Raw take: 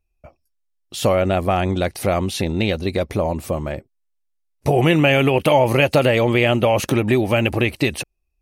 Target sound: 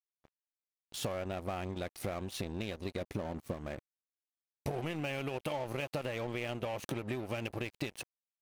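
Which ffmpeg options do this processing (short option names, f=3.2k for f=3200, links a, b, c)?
-filter_complex "[0:a]asettb=1/sr,asplit=3[a][b][c];[a]atrim=end=3.014[d];[b]atrim=start=3.01:end=3.54,asetpts=PTS-STARTPTS,afade=t=in:d=0.004:c=qsin,afade=t=out:st=0.526:d=0.004:c=qsin,equalizer=f=210:t=o:w=1.5:g=5[e];[c]atrim=start=3.536[f];[d][e]acrossfade=d=0.004:c1=hsin:c2=qsin[g];[g][f]acrossfade=d=0.004:c1=qsin:c2=hsin,acompressor=threshold=-24dB:ratio=5,aeval=exprs='sgn(val(0))*max(abs(val(0))-0.0168,0)':c=same,volume=-8.5dB"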